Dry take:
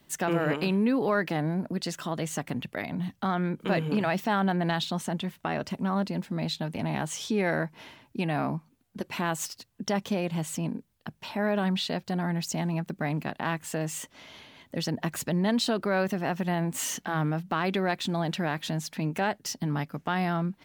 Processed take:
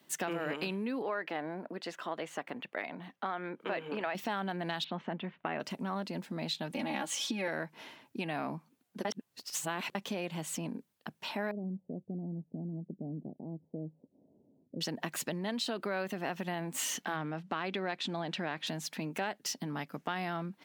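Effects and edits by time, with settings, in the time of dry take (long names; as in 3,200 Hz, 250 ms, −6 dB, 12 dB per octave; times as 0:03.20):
0:01.02–0:04.15: bass and treble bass −14 dB, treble −15 dB
0:04.84–0:05.60: low-pass filter 2,800 Hz 24 dB per octave
0:06.70–0:07.48: comb filter 3.6 ms, depth 87%
0:09.05–0:09.95: reverse
0:11.51–0:14.81: Gaussian smoothing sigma 20 samples
0:15.70–0:16.22: notch filter 5,600 Hz, Q 8.2
0:17.16–0:18.67: high-frequency loss of the air 65 metres
whole clip: dynamic equaliser 2,900 Hz, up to +4 dB, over −43 dBFS, Q 1; downward compressor, threshold −29 dBFS; high-pass filter 210 Hz 12 dB per octave; level −2 dB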